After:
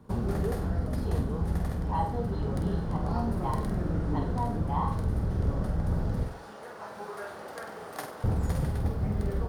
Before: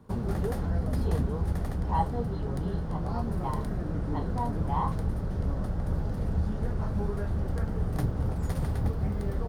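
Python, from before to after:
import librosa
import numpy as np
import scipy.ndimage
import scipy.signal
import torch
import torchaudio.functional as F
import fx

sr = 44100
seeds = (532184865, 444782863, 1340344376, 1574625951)

y = fx.highpass(x, sr, hz=690.0, slope=12, at=(6.23, 8.24))
y = fx.rider(y, sr, range_db=4, speed_s=0.5)
y = fx.room_flutter(y, sr, wall_m=8.2, rt60_s=0.44)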